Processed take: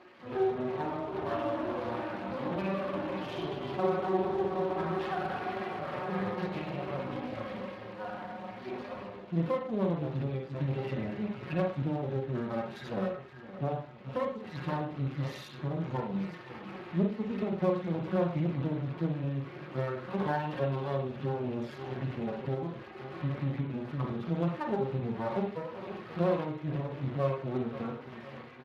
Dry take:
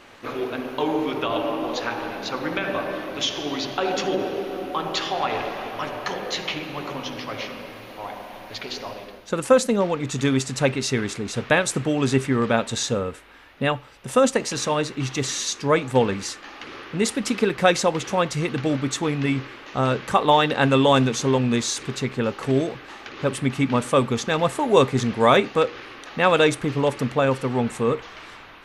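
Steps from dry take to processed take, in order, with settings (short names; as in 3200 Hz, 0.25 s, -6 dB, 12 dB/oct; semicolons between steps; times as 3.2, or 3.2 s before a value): median-filter separation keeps harmonic; feedback echo 0.516 s, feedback 47%, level -21 dB; compressor 10:1, threshold -28 dBFS, peak gain reduction 17 dB; tape spacing loss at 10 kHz 29 dB; comb 5.5 ms, depth 96%; half-wave rectifier; bell 110 Hz +2.5 dB 0.42 oct; reverb RT60 0.45 s, pre-delay 36 ms, DRR 1.5 dB; Speex 24 kbps 32000 Hz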